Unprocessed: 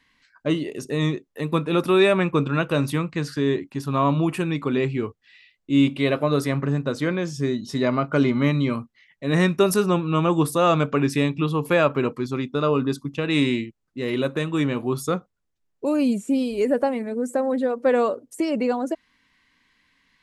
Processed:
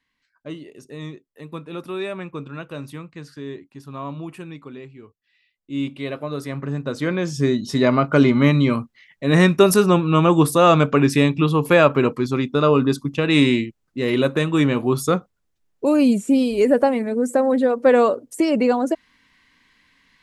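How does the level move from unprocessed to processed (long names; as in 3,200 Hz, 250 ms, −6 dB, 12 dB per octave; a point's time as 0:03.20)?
0:04.50 −11 dB
0:04.95 −18 dB
0:05.83 −7 dB
0:06.37 −7 dB
0:07.41 +5 dB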